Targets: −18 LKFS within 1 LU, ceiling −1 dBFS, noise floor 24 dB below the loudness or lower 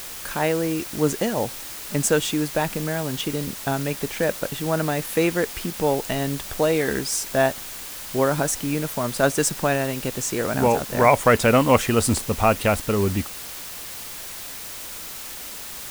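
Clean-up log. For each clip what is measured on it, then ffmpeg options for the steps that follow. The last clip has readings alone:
background noise floor −36 dBFS; target noise floor −47 dBFS; integrated loudness −23.0 LKFS; sample peak −2.0 dBFS; target loudness −18.0 LKFS
→ -af "afftdn=noise_reduction=11:noise_floor=-36"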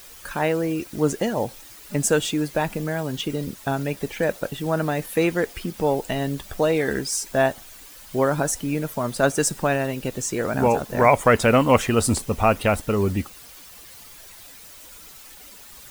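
background noise floor −44 dBFS; target noise floor −47 dBFS
→ -af "afftdn=noise_reduction=6:noise_floor=-44"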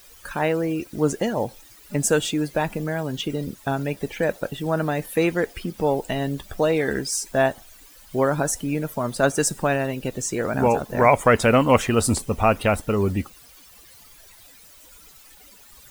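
background noise floor −49 dBFS; integrated loudness −23.0 LKFS; sample peak −2.5 dBFS; target loudness −18.0 LKFS
→ -af "volume=5dB,alimiter=limit=-1dB:level=0:latency=1"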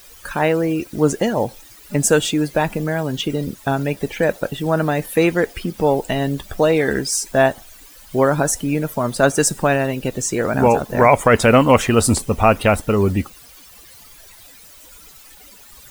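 integrated loudness −18.0 LKFS; sample peak −1.0 dBFS; background noise floor −44 dBFS

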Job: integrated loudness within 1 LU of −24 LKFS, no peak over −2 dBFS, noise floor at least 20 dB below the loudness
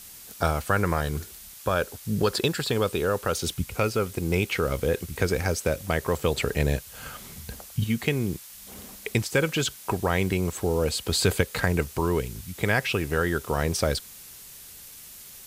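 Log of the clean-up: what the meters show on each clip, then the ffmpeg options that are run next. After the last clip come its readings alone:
background noise floor −45 dBFS; target noise floor −47 dBFS; integrated loudness −26.5 LKFS; sample peak −6.0 dBFS; target loudness −24.0 LKFS
→ -af "afftdn=noise_reduction=6:noise_floor=-45"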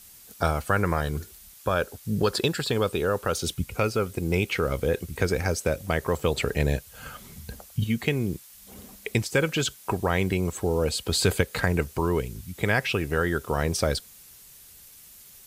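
background noise floor −50 dBFS; integrated loudness −26.5 LKFS; sample peak −6.0 dBFS; target loudness −24.0 LKFS
→ -af "volume=2.5dB"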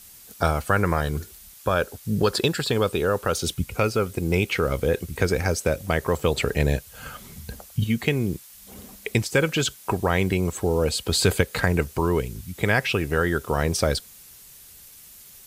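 integrated loudness −24.0 LKFS; sample peak −3.5 dBFS; background noise floor −47 dBFS

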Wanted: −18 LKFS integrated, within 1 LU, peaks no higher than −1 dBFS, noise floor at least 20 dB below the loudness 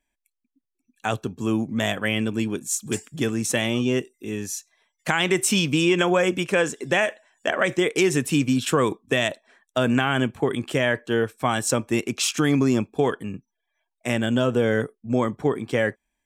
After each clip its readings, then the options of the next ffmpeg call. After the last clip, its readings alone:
integrated loudness −23.5 LKFS; sample peak −3.5 dBFS; target loudness −18.0 LKFS
→ -af "volume=5.5dB,alimiter=limit=-1dB:level=0:latency=1"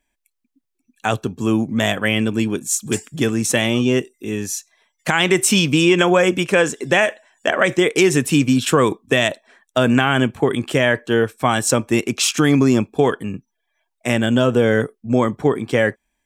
integrated loudness −18.0 LKFS; sample peak −1.0 dBFS; background noise floor −76 dBFS

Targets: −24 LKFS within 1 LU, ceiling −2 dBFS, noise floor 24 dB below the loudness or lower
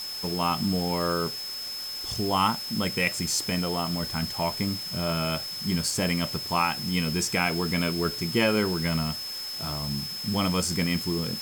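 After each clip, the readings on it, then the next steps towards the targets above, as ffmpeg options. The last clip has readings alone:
interfering tone 5,200 Hz; level of the tone −33 dBFS; background noise floor −35 dBFS; target noise floor −51 dBFS; integrated loudness −27.0 LKFS; sample peak −9.0 dBFS; target loudness −24.0 LKFS
→ -af "bandreject=frequency=5200:width=30"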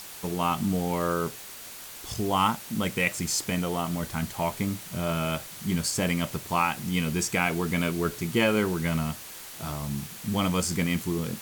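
interfering tone none found; background noise floor −43 dBFS; target noise floor −52 dBFS
→ -af "afftdn=noise_reduction=9:noise_floor=-43"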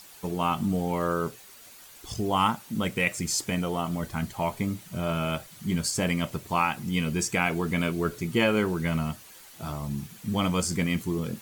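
background noise floor −50 dBFS; target noise floor −52 dBFS
→ -af "afftdn=noise_reduction=6:noise_floor=-50"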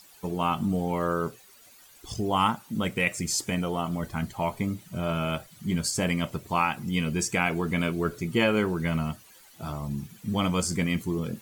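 background noise floor −54 dBFS; integrated loudness −28.0 LKFS; sample peak −9.5 dBFS; target loudness −24.0 LKFS
→ -af "volume=4dB"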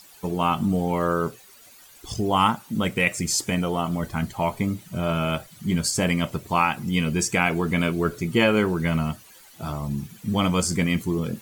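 integrated loudness −24.0 LKFS; sample peak −5.5 dBFS; background noise floor −50 dBFS

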